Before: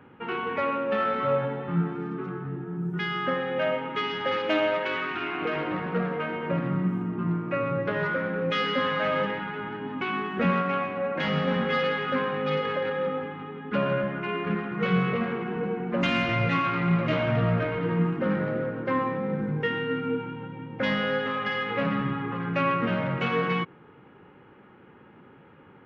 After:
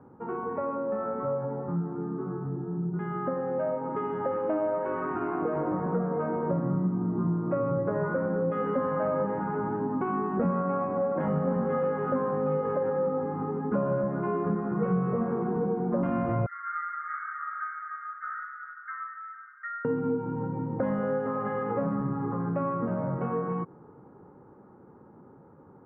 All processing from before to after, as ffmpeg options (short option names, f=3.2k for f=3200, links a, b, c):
-filter_complex "[0:a]asettb=1/sr,asplit=3[a][b][c];[a]atrim=end=16.464[d];[b]atrim=start=16.46:end=19.85,asetpts=PTS-STARTPTS,afade=t=in:d=0.004:c=qsin,afade=t=out:st=3.386:d=0.004:c=qsin,asuperpass=centerf=1600:order=20:qfactor=1.7,asplit=2[e][f];[f]adelay=32,volume=-10.5dB[g];[e][g]amix=inputs=2:normalize=0,atrim=end_sample=149499[h];[c]atrim=start=19.846[i];[d][h]acrossfade=d=0.004:c1=hsin:c2=qsin[j];[j][i]acrossfade=d=0.004:c1=qsin:c2=hsin,dynaudnorm=f=440:g=21:m=11.5dB,lowpass=f=1.1k:w=0.5412,lowpass=f=1.1k:w=1.3066,acompressor=threshold=-28dB:ratio=3"